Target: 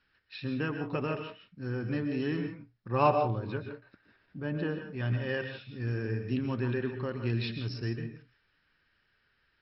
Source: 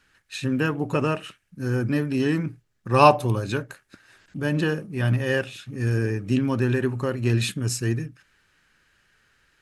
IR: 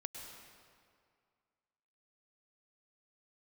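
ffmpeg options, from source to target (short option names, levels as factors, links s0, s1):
-filter_complex "[0:a]asettb=1/sr,asplit=3[s0][s1][s2];[s0]atrim=end=2.884[s3];[s1]atrim=start=2.88:end=4.89,asetpts=PTS-STARTPTS,afade=t=in:d=0.004:c=qsin,afade=t=out:st=2.006:d=0.004:c=qsin,lowpass=f=1900:p=1[s4];[s2]atrim=start=4.886[s5];[s3][s4]acrossfade=d=0.004:c1=hsin:c2=qsin[s6];[s6][s5]acrossfade=d=0.004:c1=qsin:c2=hsin[s7];[1:a]atrim=start_sample=2205,afade=t=out:st=0.2:d=0.01,atrim=end_sample=9261,asetrate=37926,aresample=44100[s8];[s7][s8]afir=irnorm=-1:irlink=0,volume=0.501" -ar 44100 -c:a mp2 -b:a 48k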